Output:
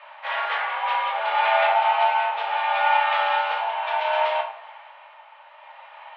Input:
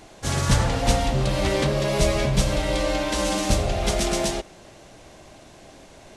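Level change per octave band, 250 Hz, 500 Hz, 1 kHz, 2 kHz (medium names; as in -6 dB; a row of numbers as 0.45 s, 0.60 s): under -40 dB, -3.0 dB, +10.5 dB, +6.0 dB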